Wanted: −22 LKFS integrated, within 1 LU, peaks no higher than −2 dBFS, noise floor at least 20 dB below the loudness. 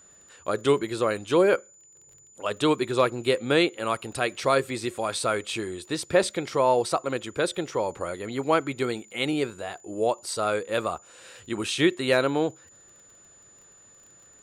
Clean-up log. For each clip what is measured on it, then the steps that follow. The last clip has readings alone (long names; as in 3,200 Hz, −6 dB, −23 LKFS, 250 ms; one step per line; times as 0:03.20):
crackle rate 23 per second; interfering tone 7,000 Hz; level of the tone −52 dBFS; integrated loudness −26.0 LKFS; sample peak −9.0 dBFS; target loudness −22.0 LKFS
→ click removal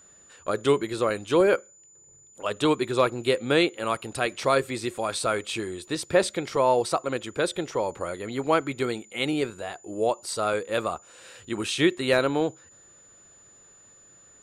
crackle rate 0 per second; interfering tone 7,000 Hz; level of the tone −52 dBFS
→ notch filter 7,000 Hz, Q 30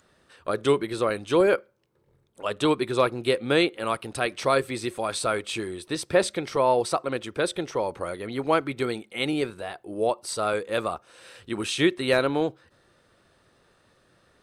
interfering tone none found; integrated loudness −26.0 LKFS; sample peak −8.5 dBFS; target loudness −22.0 LKFS
→ level +4 dB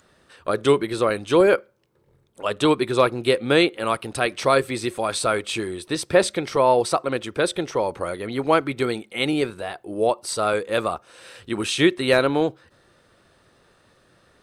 integrated loudness −22.0 LKFS; sample peak −4.5 dBFS; background noise floor −60 dBFS